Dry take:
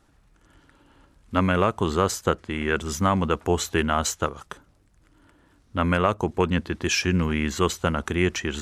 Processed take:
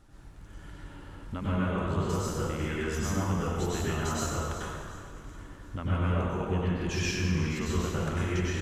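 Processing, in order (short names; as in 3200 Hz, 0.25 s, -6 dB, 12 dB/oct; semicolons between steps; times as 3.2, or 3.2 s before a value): low shelf 160 Hz +8.5 dB; compressor 8:1, threshold -34 dBFS, peak gain reduction 19.5 dB; frequency-shifting echo 0.365 s, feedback 47%, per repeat -36 Hz, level -13.5 dB; plate-style reverb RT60 1.8 s, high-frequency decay 0.7×, pre-delay 85 ms, DRR -8 dB; gain -1.5 dB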